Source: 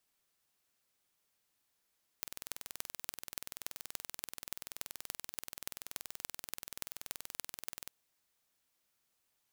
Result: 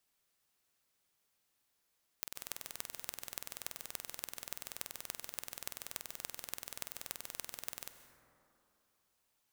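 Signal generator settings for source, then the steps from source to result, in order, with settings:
impulse train 20.9 per second, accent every 6, −9.5 dBFS 5.65 s
dense smooth reverb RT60 2.8 s, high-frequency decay 0.3×, pre-delay 120 ms, DRR 8.5 dB

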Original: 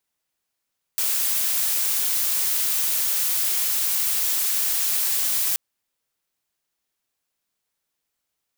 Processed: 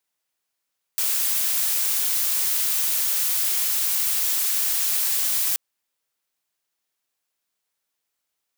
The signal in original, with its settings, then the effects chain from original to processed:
noise blue, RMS −22.5 dBFS 4.58 s
low-shelf EQ 260 Hz −8 dB

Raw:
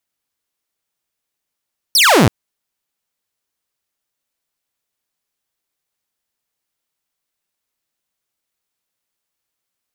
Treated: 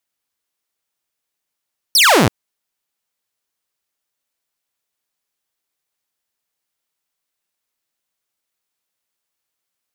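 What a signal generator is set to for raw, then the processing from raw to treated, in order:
single falling chirp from 5,900 Hz, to 89 Hz, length 0.33 s saw, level −5 dB
low-shelf EQ 290 Hz −4.5 dB

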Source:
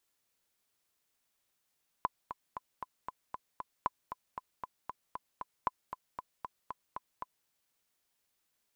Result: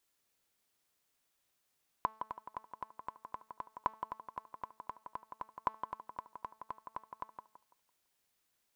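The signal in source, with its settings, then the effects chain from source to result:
click track 232 BPM, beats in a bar 7, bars 3, 1,010 Hz, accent 10 dB −16 dBFS
hum removal 219.1 Hz, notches 35
tape delay 166 ms, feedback 34%, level −5 dB, low-pass 1,800 Hz

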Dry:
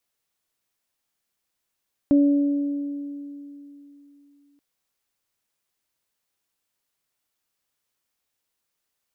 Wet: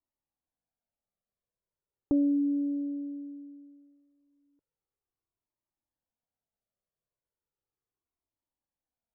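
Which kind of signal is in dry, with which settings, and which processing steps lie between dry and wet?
harmonic partials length 2.48 s, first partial 285 Hz, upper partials −13 dB, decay 3.23 s, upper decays 2.04 s, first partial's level −12.5 dB
low-pass that shuts in the quiet parts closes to 700 Hz, open at −21.5 dBFS
flanger whose copies keep moving one way falling 0.36 Hz

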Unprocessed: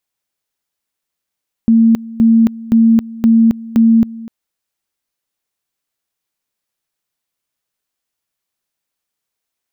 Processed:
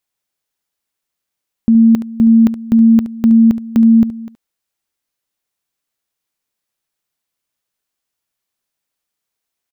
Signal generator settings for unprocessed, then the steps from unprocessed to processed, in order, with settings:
tone at two levels in turn 227 Hz −5.5 dBFS, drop 20 dB, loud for 0.27 s, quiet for 0.25 s, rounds 5
single-tap delay 71 ms −14 dB

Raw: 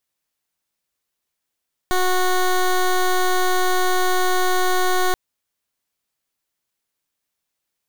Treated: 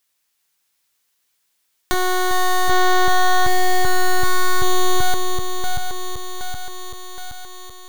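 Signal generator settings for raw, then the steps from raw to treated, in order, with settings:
pulse wave 367 Hz, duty 14% −17.5 dBFS 3.23 s
feedback delay that plays each chunk backwards 385 ms, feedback 68%, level −5 dB
notch filter 650 Hz, Q 12
one half of a high-frequency compander encoder only

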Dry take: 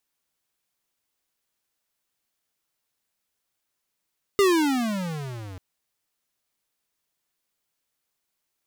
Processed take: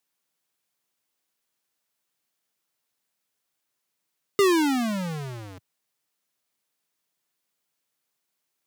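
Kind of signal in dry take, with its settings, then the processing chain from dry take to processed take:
pitch glide with a swell square, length 1.19 s, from 411 Hz, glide −26.5 semitones, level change −22 dB, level −17 dB
high-pass filter 110 Hz 24 dB per octave

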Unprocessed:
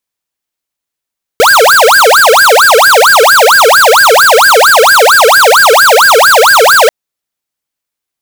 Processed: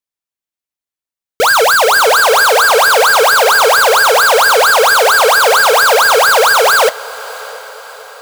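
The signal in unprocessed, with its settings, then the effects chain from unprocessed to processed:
siren wail 434–1,630 Hz 4.4 per second square −4 dBFS 5.49 s
flanger 0.63 Hz, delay 6.5 ms, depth 4.3 ms, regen −81%
feedback delay with all-pass diffusion 648 ms, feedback 52%, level −13 dB
expander for the loud parts 1.5 to 1, over −19 dBFS

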